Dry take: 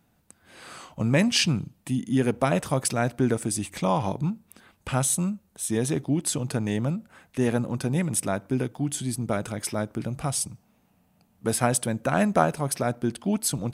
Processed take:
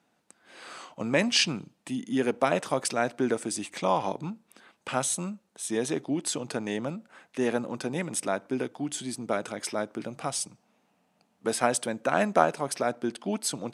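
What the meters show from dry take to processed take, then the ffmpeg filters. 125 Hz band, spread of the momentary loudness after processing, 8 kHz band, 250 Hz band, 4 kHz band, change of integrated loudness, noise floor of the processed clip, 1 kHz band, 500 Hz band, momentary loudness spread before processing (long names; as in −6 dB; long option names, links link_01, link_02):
−12.5 dB, 12 LU, −4.0 dB, −5.0 dB, −0.5 dB, −3.0 dB, −71 dBFS, 0.0 dB, −0.5 dB, 8 LU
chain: -af "highpass=290,lowpass=7800"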